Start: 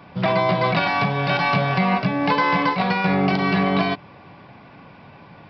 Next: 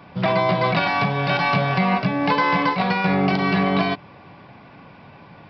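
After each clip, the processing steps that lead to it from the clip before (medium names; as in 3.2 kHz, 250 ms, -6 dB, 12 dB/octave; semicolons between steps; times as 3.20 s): no audible change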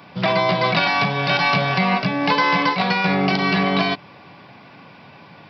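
high-pass 110 Hz; treble shelf 3.1 kHz +10.5 dB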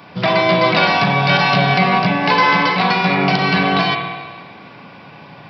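spring tank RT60 1.6 s, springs 34/50 ms, chirp 60 ms, DRR 2 dB; trim +3 dB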